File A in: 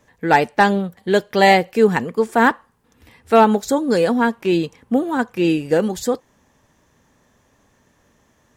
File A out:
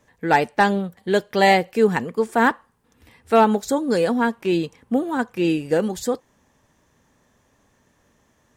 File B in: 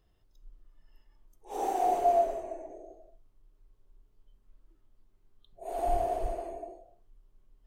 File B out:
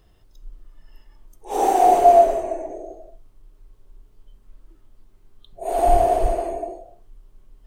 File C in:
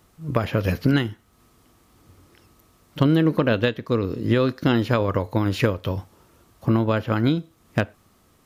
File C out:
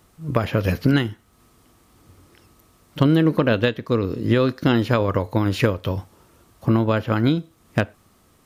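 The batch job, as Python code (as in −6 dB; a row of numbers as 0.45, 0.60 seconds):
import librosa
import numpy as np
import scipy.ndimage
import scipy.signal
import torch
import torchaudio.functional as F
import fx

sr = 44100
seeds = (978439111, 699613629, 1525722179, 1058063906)

y = fx.peak_eq(x, sr, hz=8800.0, db=3.0, octaves=0.2)
y = y * 10.0 ** (-22 / 20.0) / np.sqrt(np.mean(np.square(y)))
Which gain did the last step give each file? −3.0, +13.0, +1.5 decibels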